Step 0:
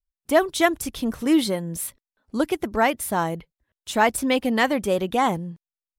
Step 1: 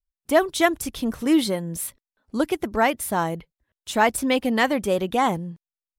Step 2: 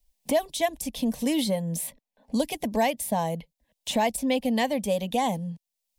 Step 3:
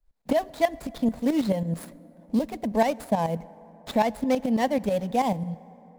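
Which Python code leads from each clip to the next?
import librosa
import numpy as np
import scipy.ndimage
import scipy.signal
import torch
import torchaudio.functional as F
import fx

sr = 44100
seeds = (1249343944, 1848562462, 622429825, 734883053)

y1 = x
y2 = fx.rider(y1, sr, range_db=10, speed_s=2.0)
y2 = fx.fixed_phaser(y2, sr, hz=360.0, stages=6)
y2 = fx.band_squash(y2, sr, depth_pct=70)
y2 = y2 * librosa.db_to_amplitude(-2.0)
y3 = scipy.ndimage.median_filter(y2, 15, mode='constant')
y3 = fx.tremolo_shape(y3, sr, shape='saw_up', hz=9.2, depth_pct=70)
y3 = fx.rev_plate(y3, sr, seeds[0], rt60_s=4.1, hf_ratio=0.4, predelay_ms=0, drr_db=20.0)
y3 = y3 * librosa.db_to_amplitude(5.0)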